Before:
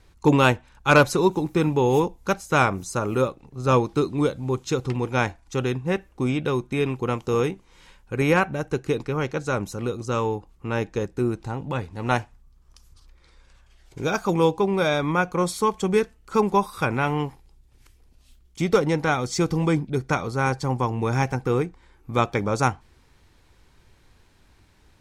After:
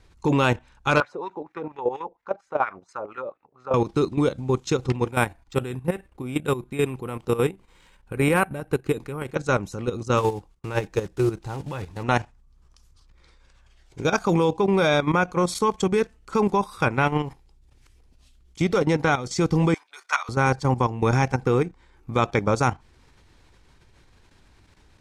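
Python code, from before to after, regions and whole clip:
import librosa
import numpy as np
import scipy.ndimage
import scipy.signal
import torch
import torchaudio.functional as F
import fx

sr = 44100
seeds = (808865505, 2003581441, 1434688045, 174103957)

y = fx.chain(x, sr, fx.high_shelf(hz=6800.0, db=-8.0),
    fx.wah_lfo(hz=4.3, low_hz=530.0, high_hz=1900.0, q=2.8), at=(1.0, 3.74))
y = fx.chain(y, sr, fx.tremolo_shape(shape='saw_up', hz=6.3, depth_pct=55),
    fx.resample_bad(factor=4, down='filtered', up='hold'), at=(5.11, 9.35))
y = fx.chain(y, sr, fx.block_float(bits=5),
    fx.notch(hz=240.0, q=5.2),
    fx.gate_hold(open_db=-40.0, close_db=-46.0, hold_ms=71.0, range_db=-21, attack_ms=1.4, release_ms=100.0), at=(10.17, 12.04))
y = fx.chain(y, sr, fx.highpass(hz=990.0, slope=24),
    fx.doubler(ms=13.0, db=-3), at=(19.74, 20.29))
y = scipy.signal.sosfilt(scipy.signal.butter(2, 9900.0, 'lowpass', fs=sr, output='sos'), y)
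y = fx.level_steps(y, sr, step_db=12)
y = y * librosa.db_to_amplitude(5.0)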